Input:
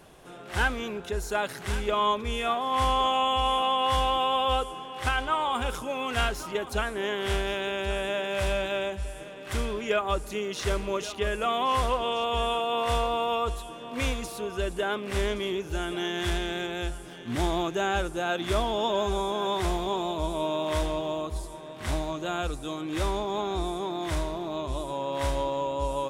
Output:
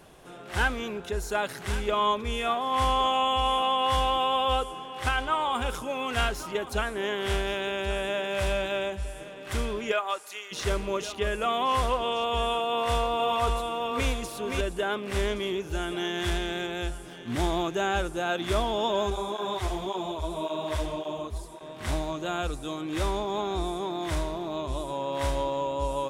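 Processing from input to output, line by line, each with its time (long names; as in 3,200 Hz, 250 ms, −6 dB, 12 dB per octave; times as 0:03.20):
0:09.91–0:10.51: high-pass filter 490 Hz → 1,400 Hz
0:12.67–0:14.61: single-tap delay 522 ms −3.5 dB
0:19.10–0:21.61: through-zero flanger with one copy inverted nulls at 1.8 Hz, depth 6.6 ms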